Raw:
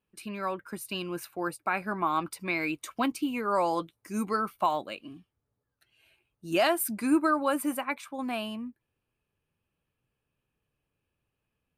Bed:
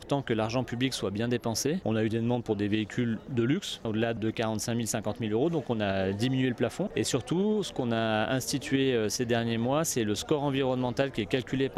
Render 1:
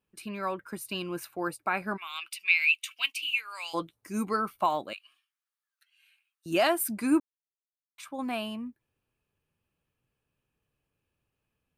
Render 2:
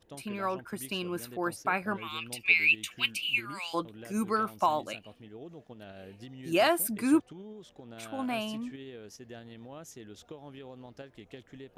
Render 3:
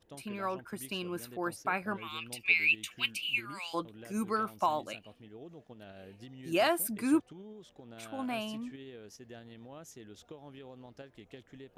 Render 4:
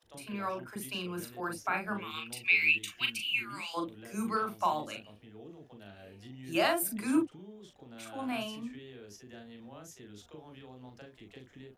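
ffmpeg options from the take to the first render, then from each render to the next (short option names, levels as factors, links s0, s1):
-filter_complex "[0:a]asplit=3[s0][s1][s2];[s0]afade=t=out:st=1.96:d=0.02[s3];[s1]highpass=f=2700:t=q:w=6.7,afade=t=in:st=1.96:d=0.02,afade=t=out:st=3.73:d=0.02[s4];[s2]afade=t=in:st=3.73:d=0.02[s5];[s3][s4][s5]amix=inputs=3:normalize=0,asettb=1/sr,asplit=3[s6][s7][s8];[s6]atrim=end=4.934[s9];[s7]atrim=start=4.93:end=6.46,asetpts=PTS-STARTPTS,afade=t=in:d=0.004:c=qsin,afade=t=out:st=1.526:d=0.004:c=qsin,highpass=f=1300:w=0.5412,highpass=f=1300:w=1.3066[s10];[s8]atrim=start=6.456[s11];[s9][s10]acrossfade=d=0.004:c1=hsin:c2=qsin[s12];[s12][s11]acrossfade=d=0.004:c1=qsin:c2=hsin,asplit=3[s13][s14][s15];[s13]atrim=end=7.2,asetpts=PTS-STARTPTS,afade=t=out:st=7.196:d=0.004:c=hsin[s16];[s14]atrim=start=7.2:end=7.98,asetpts=PTS-STARTPTS,volume=0[s17];[s15]atrim=start=7.98,asetpts=PTS-STARTPTS,afade=t=in:d=0.004:c=hsin[s18];[s16][s17][s18]concat=n=3:v=0:a=1"
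-filter_complex "[1:a]volume=0.112[s0];[0:a][s0]amix=inputs=2:normalize=0"
-af "volume=0.708"
-filter_complex "[0:a]asplit=2[s0][s1];[s1]adelay=39,volume=0.501[s2];[s0][s2]amix=inputs=2:normalize=0,acrossover=split=510[s3][s4];[s3]adelay=30[s5];[s5][s4]amix=inputs=2:normalize=0"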